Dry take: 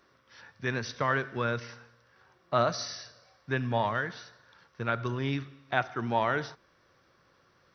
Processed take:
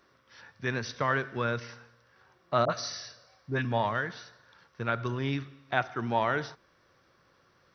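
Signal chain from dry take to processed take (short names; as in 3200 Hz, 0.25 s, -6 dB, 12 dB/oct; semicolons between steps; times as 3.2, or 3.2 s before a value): 2.65–3.65 dispersion highs, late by 48 ms, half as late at 790 Hz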